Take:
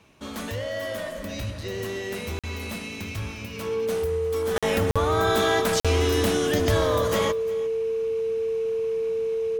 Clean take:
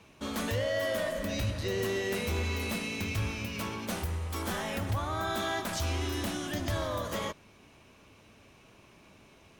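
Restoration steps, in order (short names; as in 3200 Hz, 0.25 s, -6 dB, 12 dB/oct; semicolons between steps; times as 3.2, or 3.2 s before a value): notch 450 Hz, Q 30; interpolate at 2.39/4.58/4.91/5.8, 46 ms; inverse comb 0.353 s -19.5 dB; gain 0 dB, from 4.56 s -9 dB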